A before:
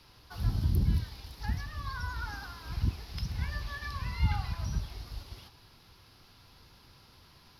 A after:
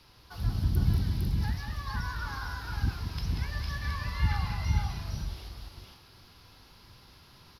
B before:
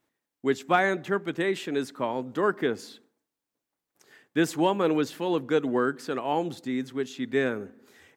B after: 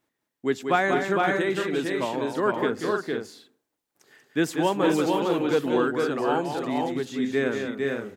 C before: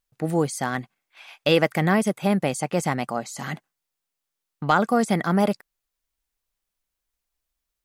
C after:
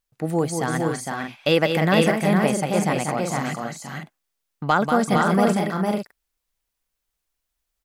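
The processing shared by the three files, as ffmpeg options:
-af "aecho=1:1:188|230|457|500:0.473|0.133|0.668|0.422"

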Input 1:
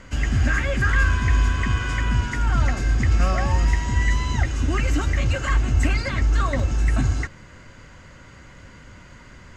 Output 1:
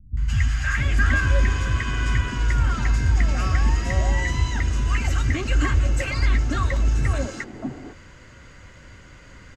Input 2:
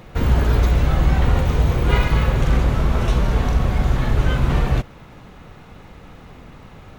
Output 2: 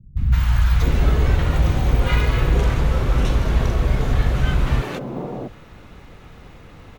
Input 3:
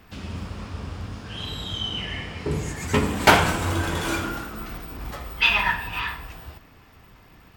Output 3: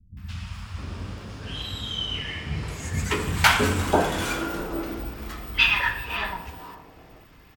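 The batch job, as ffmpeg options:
-filter_complex "[0:a]acrossover=split=180|860[a][b][c];[c]adelay=170[d];[b]adelay=660[e];[a][e][d]amix=inputs=3:normalize=0"

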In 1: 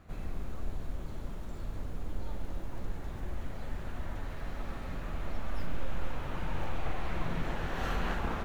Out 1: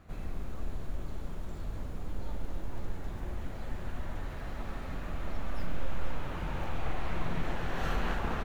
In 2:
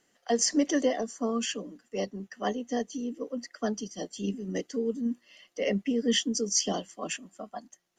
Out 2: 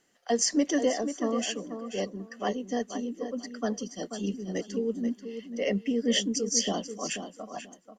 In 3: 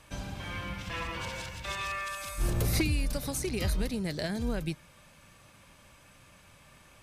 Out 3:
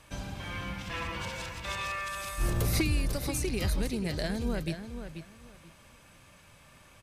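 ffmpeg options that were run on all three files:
-filter_complex "[0:a]asplit=2[a][b];[b]adelay=486,lowpass=f=4.5k:p=1,volume=-9dB,asplit=2[c][d];[d]adelay=486,lowpass=f=4.5k:p=1,volume=0.21,asplit=2[e][f];[f]adelay=486,lowpass=f=4.5k:p=1,volume=0.21[g];[a][c][e][g]amix=inputs=4:normalize=0"

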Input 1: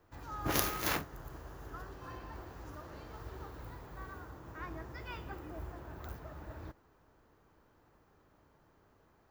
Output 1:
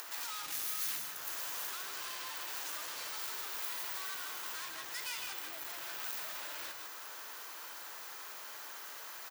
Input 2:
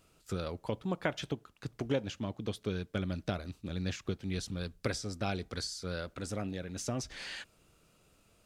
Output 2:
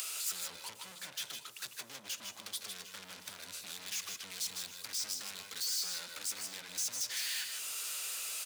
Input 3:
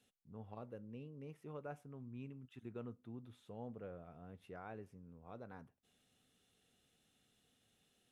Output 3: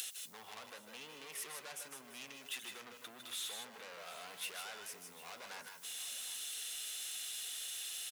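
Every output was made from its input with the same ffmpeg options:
-filter_complex "[0:a]acrossover=split=220[a][b];[b]acompressor=threshold=-54dB:ratio=8[c];[a][c]amix=inputs=2:normalize=0,asplit=2[d][e];[e]highpass=f=720:p=1,volume=41dB,asoftclip=type=tanh:threshold=-27dB[f];[d][f]amix=inputs=2:normalize=0,lowpass=f=6.7k:p=1,volume=-6dB,aecho=1:1:146|156|158|753:0.251|0.355|0.316|0.168,acompressor=mode=upward:threshold=-37dB:ratio=2.5,aderivative,volume=3dB"

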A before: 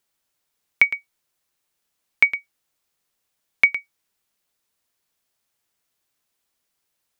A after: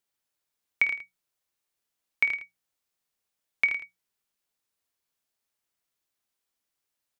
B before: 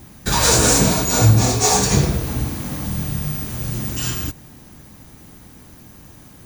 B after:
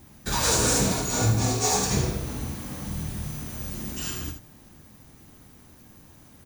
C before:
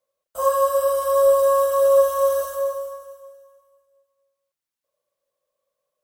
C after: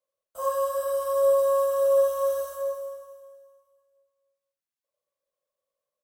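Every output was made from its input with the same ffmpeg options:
-af "bandreject=f=60:t=h:w=6,bandreject=f=120:t=h:w=6,bandreject=f=180:t=h:w=6,aecho=1:1:24|51|78:0.168|0.266|0.376,volume=-8.5dB"

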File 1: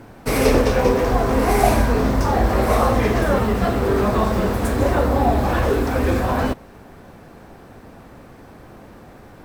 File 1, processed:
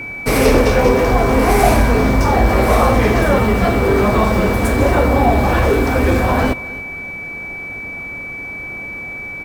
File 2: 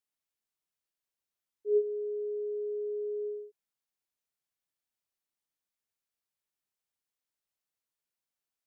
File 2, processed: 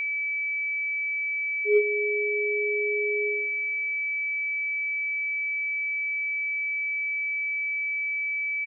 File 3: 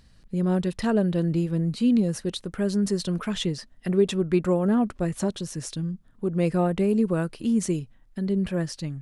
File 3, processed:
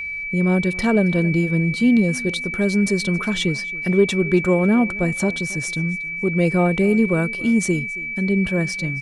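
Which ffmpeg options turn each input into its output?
-af "aecho=1:1:274|548:0.0891|0.0276,aeval=exprs='val(0)+0.0282*sin(2*PI*2300*n/s)':c=same,acontrast=60,volume=-1dB"

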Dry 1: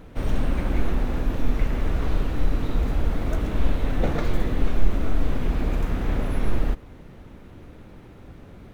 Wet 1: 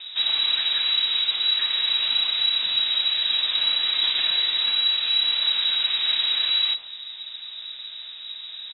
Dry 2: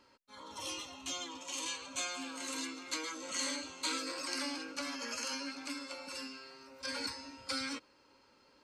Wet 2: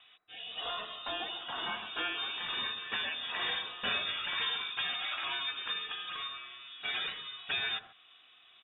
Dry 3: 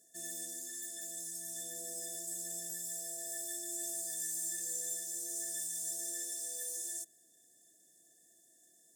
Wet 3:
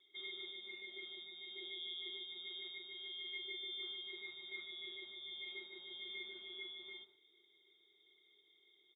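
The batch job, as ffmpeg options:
-filter_complex "[0:a]acrossover=split=520|2700[a][b][c];[a]acompressor=threshold=-27dB:ratio=10[d];[b]asoftclip=type=hard:threshold=-34dB[e];[c]aecho=1:1:81.63|137:0.398|0.355[f];[d][e][f]amix=inputs=3:normalize=0,lowpass=f=3.3k:t=q:w=0.5098,lowpass=f=3.3k:t=q:w=0.6013,lowpass=f=3.3k:t=q:w=0.9,lowpass=f=3.3k:t=q:w=2.563,afreqshift=-3900,volume=6.5dB"

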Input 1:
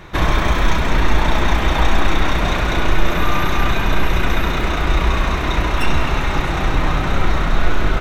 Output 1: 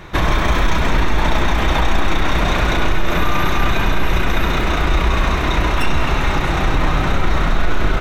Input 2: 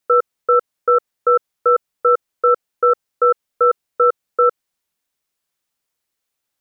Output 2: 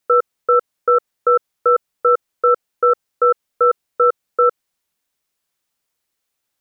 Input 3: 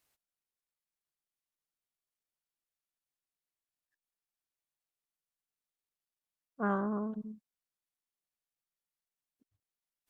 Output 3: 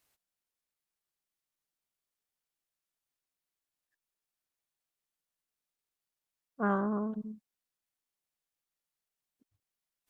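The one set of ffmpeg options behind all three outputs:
-af "alimiter=limit=-8dB:level=0:latency=1:release=34,volume=2dB"

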